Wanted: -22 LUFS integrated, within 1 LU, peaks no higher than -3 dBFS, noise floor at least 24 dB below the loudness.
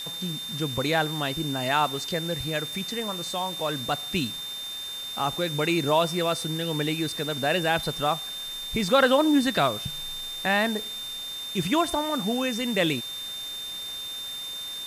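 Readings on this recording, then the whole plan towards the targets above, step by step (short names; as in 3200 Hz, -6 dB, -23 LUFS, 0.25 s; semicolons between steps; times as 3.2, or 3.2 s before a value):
steady tone 3600 Hz; tone level -33 dBFS; noise floor -35 dBFS; noise floor target -51 dBFS; loudness -26.5 LUFS; peak -8.5 dBFS; loudness target -22.0 LUFS
-> notch 3600 Hz, Q 30; denoiser 16 dB, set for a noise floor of -35 dBFS; gain +4.5 dB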